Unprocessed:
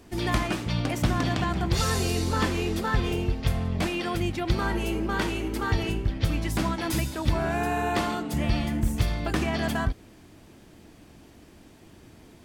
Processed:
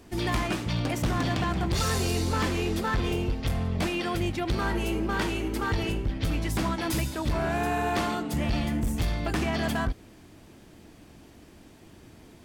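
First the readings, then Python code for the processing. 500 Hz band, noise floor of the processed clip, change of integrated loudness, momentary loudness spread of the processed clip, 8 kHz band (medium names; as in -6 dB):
-0.5 dB, -52 dBFS, -1.0 dB, 3 LU, -0.5 dB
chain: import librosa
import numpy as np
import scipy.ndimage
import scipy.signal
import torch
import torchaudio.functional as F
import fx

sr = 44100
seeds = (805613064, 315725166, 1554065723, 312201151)

y = np.clip(x, -10.0 ** (-21.5 / 20.0), 10.0 ** (-21.5 / 20.0))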